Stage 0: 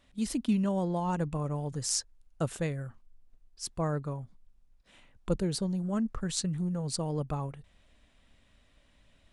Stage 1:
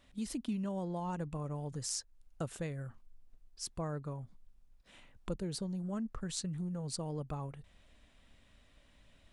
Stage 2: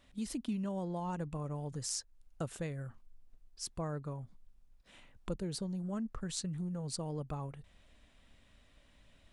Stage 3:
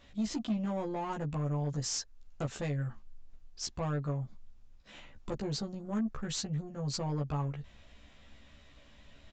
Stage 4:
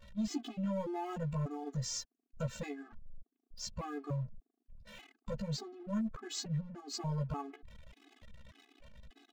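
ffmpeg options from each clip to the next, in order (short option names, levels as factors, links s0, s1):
-af "acompressor=threshold=0.00891:ratio=2"
-af anull
-filter_complex "[0:a]aresample=16000,asoftclip=type=tanh:threshold=0.0158,aresample=44100,asplit=2[s0][s1];[s1]adelay=14,volume=0.794[s2];[s0][s2]amix=inputs=2:normalize=0,volume=1.78"
-af "aeval=exprs='val(0)+0.5*0.00299*sgn(val(0))':c=same,anlmdn=0.00158,afftfilt=real='re*gt(sin(2*PI*1.7*pts/sr)*(1-2*mod(floor(b*sr/1024/220),2)),0)':imag='im*gt(sin(2*PI*1.7*pts/sr)*(1-2*mod(floor(b*sr/1024/220),2)),0)':win_size=1024:overlap=0.75,volume=0.891"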